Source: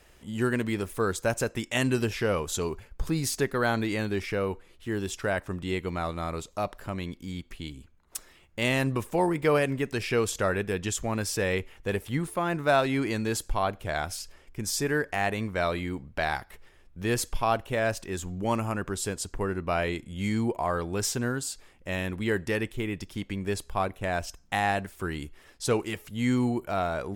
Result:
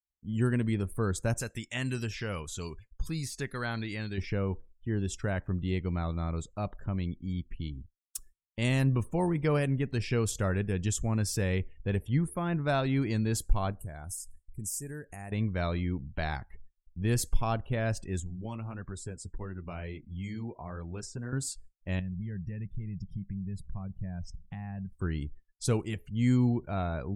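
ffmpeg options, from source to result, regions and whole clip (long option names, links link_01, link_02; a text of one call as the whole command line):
ffmpeg -i in.wav -filter_complex "[0:a]asettb=1/sr,asplit=3[link_01][link_02][link_03];[link_01]atrim=end=1.414[link_04];[link_02]atrim=start=1.41:end=4.18,asetpts=PTS-STARTPTS,afade=type=in:duration=0.004:curve=qsin,afade=type=out:start_time=2.766:duration=0.004:curve=qsin,acrossover=split=2600[link_05][link_06];[link_06]acompressor=threshold=-44dB:ratio=4:attack=1:release=60[link_07];[link_05][link_07]amix=inputs=2:normalize=0,tiltshelf=frequency=1400:gain=-8[link_08];[link_03]atrim=start=4.176[link_09];[link_04][link_08]acrossfade=duration=0.004:curve1=hsin:curve2=qsin[link_10];[link_10][link_09]acrossfade=duration=0.004:curve1=qsin:curve2=hsin,asettb=1/sr,asplit=3[link_11][link_12][link_13];[link_11]atrim=end=13.724[link_14];[link_12]atrim=start=13.72:end=15.32,asetpts=PTS-STARTPTS,afade=type=in:duration=0.004:curve=qsin,afade=type=out:start_time=1.596:duration=0.004:curve=qsin,highshelf=frequency=5900:width_type=q:width=1.5:gain=13,acompressor=threshold=-43dB:ratio=2:attack=3.2:release=140:knee=1:detection=peak[link_15];[link_13]atrim=start=15.316[link_16];[link_14][link_15]acrossfade=duration=0.004:curve1=hsin:curve2=qsin[link_17];[link_17][link_16]acrossfade=duration=0.004:curve1=qsin:curve2=hsin,asettb=1/sr,asplit=3[link_18][link_19][link_20];[link_18]atrim=end=18.204[link_21];[link_19]atrim=start=18.2:end=21.33,asetpts=PTS-STARTPTS,afade=type=in:duration=0.004:curve=qsin,afade=type=out:start_time=3.126:duration=0.004:curve=qsin,acrossover=split=400|1800[link_22][link_23][link_24];[link_22]acompressor=threshold=-36dB:ratio=4[link_25];[link_23]acompressor=threshold=-32dB:ratio=4[link_26];[link_24]acompressor=threshold=-36dB:ratio=4[link_27];[link_25][link_26][link_27]amix=inputs=3:normalize=0,flanger=delay=1:depth=8.8:regen=-48:speed=1.5:shape=sinusoidal[link_28];[link_20]atrim=start=21.326[link_29];[link_21][link_28]acrossfade=duration=0.004:curve1=hsin:curve2=qsin[link_30];[link_30][link_29]acrossfade=duration=0.004:curve1=qsin:curve2=hsin,asettb=1/sr,asplit=3[link_31][link_32][link_33];[link_31]atrim=end=21.994[link_34];[link_32]atrim=start=21.99:end=24.93,asetpts=PTS-STARTPTS,afade=type=in:duration=0.004:curve=qsin,afade=type=out:start_time=2.936:duration=0.004:curve=qsin,lowshelf=frequency=230:width_type=q:width=3:gain=7,acompressor=threshold=-41dB:ratio=3:attack=3.2:release=140:knee=1:detection=peak[link_35];[link_33]atrim=start=24.926[link_36];[link_34][link_35]acrossfade=duration=0.004:curve1=hsin:curve2=qsin[link_37];[link_37][link_36]acrossfade=duration=0.004:curve1=qsin:curve2=hsin,agate=range=-33dB:threshold=-46dB:ratio=3:detection=peak,afftdn=noise_reduction=33:noise_floor=-46,bass=frequency=250:gain=13,treble=frequency=4000:gain=6,volume=-7.5dB" out.wav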